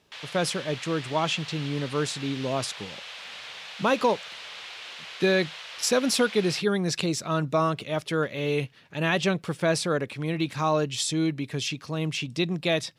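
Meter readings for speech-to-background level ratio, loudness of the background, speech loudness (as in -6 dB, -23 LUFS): 11.5 dB, -38.5 LUFS, -27.0 LUFS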